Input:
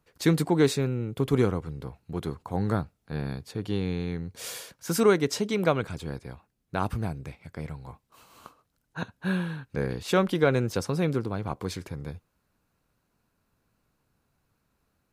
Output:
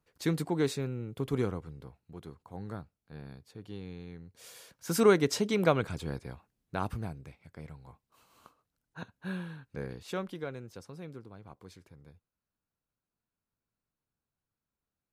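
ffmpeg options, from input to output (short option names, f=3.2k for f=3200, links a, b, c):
-af "volume=5dB,afade=t=out:st=1.52:d=0.65:silence=0.473151,afade=t=in:st=4.54:d=0.53:silence=0.237137,afade=t=out:st=6.17:d=1.12:silence=0.398107,afade=t=out:st=9.81:d=0.76:silence=0.354813"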